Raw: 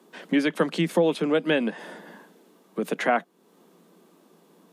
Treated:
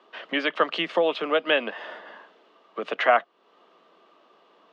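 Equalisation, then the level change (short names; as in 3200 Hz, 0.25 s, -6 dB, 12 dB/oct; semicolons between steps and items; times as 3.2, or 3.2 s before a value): speaker cabinet 470–4600 Hz, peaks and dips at 640 Hz +6 dB, 1200 Hz +9 dB, 1900 Hz +3 dB, 2900 Hz +8 dB; 0.0 dB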